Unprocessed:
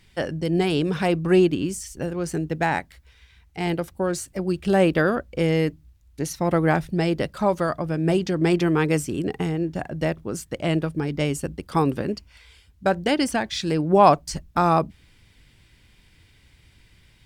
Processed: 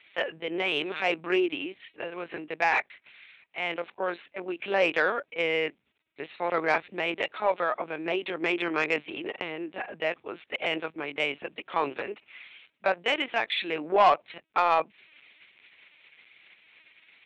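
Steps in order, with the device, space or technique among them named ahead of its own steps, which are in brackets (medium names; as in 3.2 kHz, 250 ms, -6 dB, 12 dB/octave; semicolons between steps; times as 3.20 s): talking toy (LPC vocoder at 8 kHz pitch kept; high-pass 560 Hz 12 dB/octave; peaking EQ 2.4 kHz +9 dB 0.51 oct; saturation -12 dBFS, distortion -14 dB)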